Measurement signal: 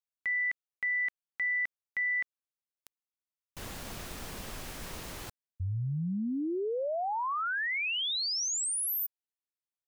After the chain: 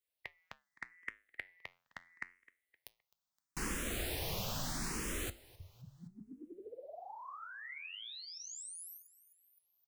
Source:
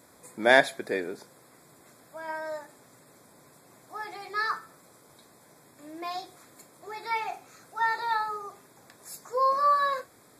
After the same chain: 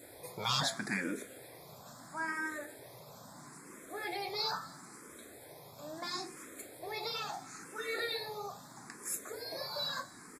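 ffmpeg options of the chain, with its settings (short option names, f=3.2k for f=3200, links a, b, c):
-filter_complex "[0:a]afftfilt=real='re*lt(hypot(re,im),0.1)':imag='im*lt(hypot(re,im),0.1)':win_size=1024:overlap=0.75,adynamicequalizer=threshold=0.002:dfrequency=1100:dqfactor=0.72:tfrequency=1100:tqfactor=0.72:attack=5:release=100:ratio=0.417:range=2:mode=cutabove:tftype=bell,flanger=delay=5.9:depth=5.6:regen=-82:speed=0.25:shape=sinusoidal,aecho=1:1:259|518|777:0.0708|0.0368|0.0191,asplit=2[a][b];[b]afreqshift=0.75[c];[a][c]amix=inputs=2:normalize=1,volume=11.5dB"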